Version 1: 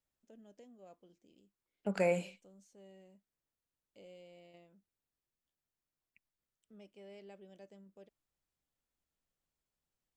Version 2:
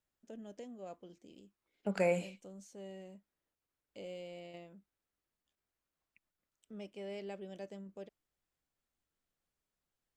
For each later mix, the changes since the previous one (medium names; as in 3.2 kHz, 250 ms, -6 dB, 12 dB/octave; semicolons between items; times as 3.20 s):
first voice +9.5 dB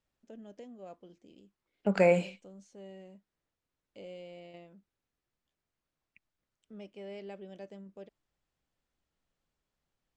second voice +7.5 dB; master: add distance through air 73 m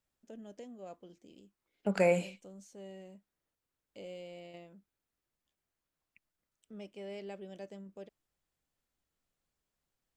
second voice -3.5 dB; master: remove distance through air 73 m